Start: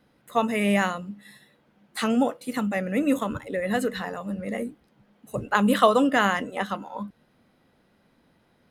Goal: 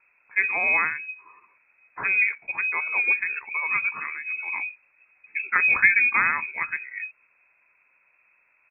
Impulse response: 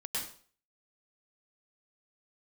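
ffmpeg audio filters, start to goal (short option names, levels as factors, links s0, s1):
-af "asetrate=38170,aresample=44100,atempo=1.15535,lowpass=f=2300:t=q:w=0.5098,lowpass=f=2300:t=q:w=0.6013,lowpass=f=2300:t=q:w=0.9,lowpass=f=2300:t=q:w=2.563,afreqshift=-2700"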